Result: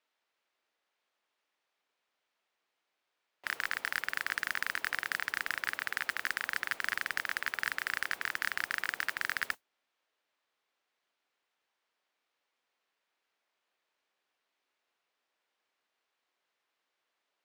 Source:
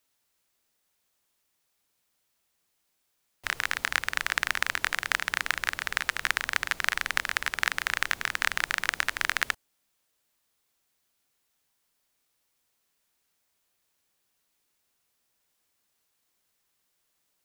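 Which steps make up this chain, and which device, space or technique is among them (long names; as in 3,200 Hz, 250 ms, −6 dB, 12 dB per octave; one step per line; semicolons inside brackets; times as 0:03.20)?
carbon microphone (band-pass filter 390–3,100 Hz; soft clipping −18 dBFS, distortion −8 dB; noise that follows the level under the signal 15 dB)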